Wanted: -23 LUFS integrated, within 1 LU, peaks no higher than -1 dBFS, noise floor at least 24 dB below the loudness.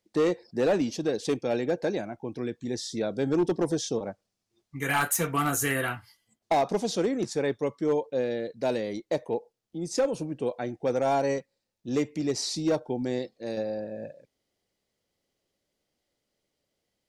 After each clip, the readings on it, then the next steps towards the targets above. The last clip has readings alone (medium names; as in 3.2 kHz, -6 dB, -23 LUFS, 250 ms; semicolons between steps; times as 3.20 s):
clipped samples 0.7%; clipping level -18.5 dBFS; loudness -29.0 LUFS; peak level -18.5 dBFS; loudness target -23.0 LUFS
-> clip repair -18.5 dBFS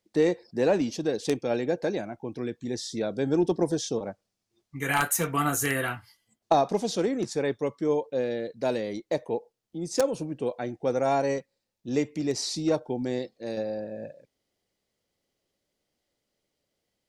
clipped samples 0.0%; loudness -28.5 LUFS; peak level -9.5 dBFS; loudness target -23.0 LUFS
-> trim +5.5 dB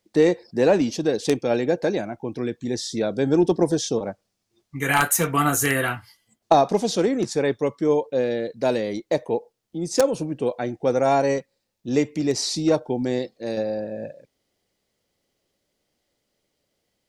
loudness -23.0 LUFS; peak level -4.0 dBFS; noise floor -77 dBFS